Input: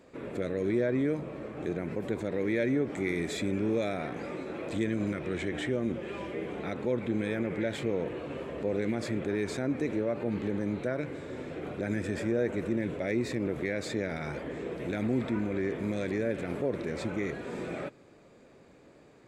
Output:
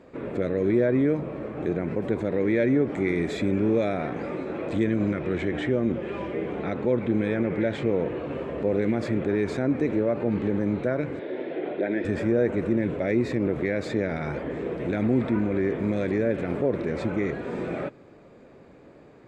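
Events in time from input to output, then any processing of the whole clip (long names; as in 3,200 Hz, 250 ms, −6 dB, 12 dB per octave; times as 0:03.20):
0:04.87–0:08.33: low-pass filter 8,600 Hz
0:11.19–0:12.05: loudspeaker in its box 310–4,100 Hz, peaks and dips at 350 Hz +7 dB, 640 Hz +5 dB, 1,200 Hz −9 dB, 1,900 Hz +4 dB, 3,400 Hz +5 dB
whole clip: low-pass filter 1,900 Hz 6 dB per octave; level +6.5 dB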